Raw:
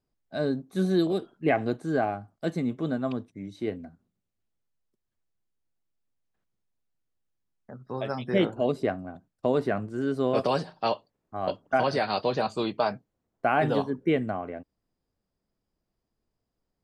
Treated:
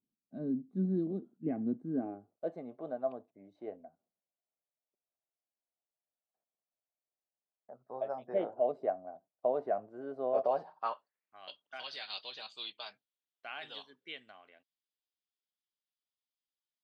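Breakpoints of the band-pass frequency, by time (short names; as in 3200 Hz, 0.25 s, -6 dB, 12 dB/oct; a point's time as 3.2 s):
band-pass, Q 3.7
1.91 s 230 Hz
2.57 s 670 Hz
10.53 s 670 Hz
11.51 s 3400 Hz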